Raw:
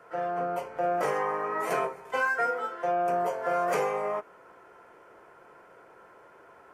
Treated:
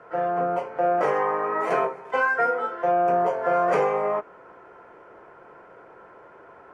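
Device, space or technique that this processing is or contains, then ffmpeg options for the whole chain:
through cloth: -filter_complex "[0:a]asettb=1/sr,asplit=3[s0][s1][s2];[s0]atrim=end=0.594[s3];[s1]atrim=start=0.59:end=2.31,asetpts=PTS-STARTPTS,afade=t=in:d=0.004:c=qsin,afade=t=out:st=1.716:d=0.004:c=qsin,highpass=f=170:p=1[s4];[s2]atrim=start=2.306[s5];[s3][s4]acrossfade=d=0.004:c1=hsin:c2=qsin[s6];[s6][s5]acrossfade=d=0.004:c1=qsin:c2=hsin,lowpass=8900,highshelf=f=3800:g=-15.5,volume=2.11"

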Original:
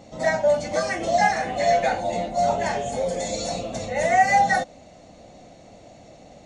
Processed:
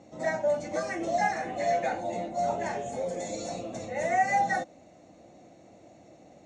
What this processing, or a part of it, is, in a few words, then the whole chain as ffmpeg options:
car door speaker: -af "highpass=87,equalizer=f=330:t=q:w=4:g=8,equalizer=f=3200:t=q:w=4:g=-6,equalizer=f=4700:t=q:w=4:g=-7,lowpass=f=8600:w=0.5412,lowpass=f=8600:w=1.3066,volume=0.422"

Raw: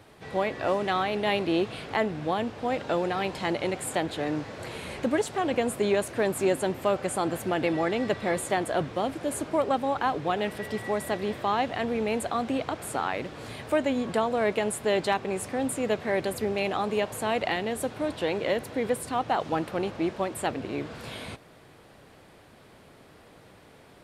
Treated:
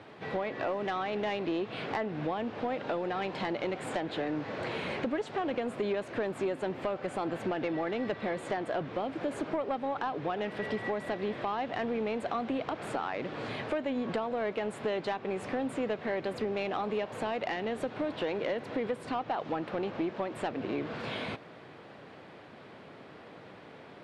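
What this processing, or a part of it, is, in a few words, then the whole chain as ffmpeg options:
AM radio: -af "highpass=140,lowpass=3400,acompressor=threshold=0.0251:ratio=6,asoftclip=type=tanh:threshold=0.0501,volume=1.58"

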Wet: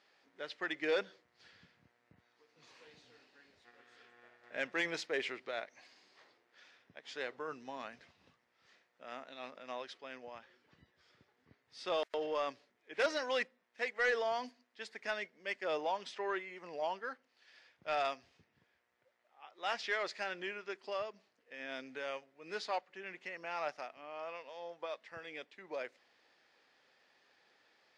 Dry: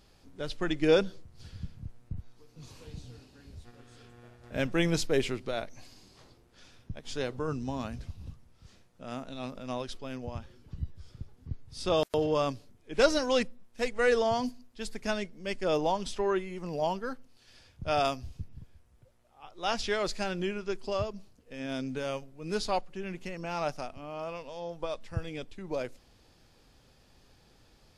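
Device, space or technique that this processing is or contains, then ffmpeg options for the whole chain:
intercom: -af "highpass=480,lowpass=4700,equalizer=f=1900:t=o:w=0.6:g=9,asoftclip=type=tanh:threshold=0.119,volume=0.531"

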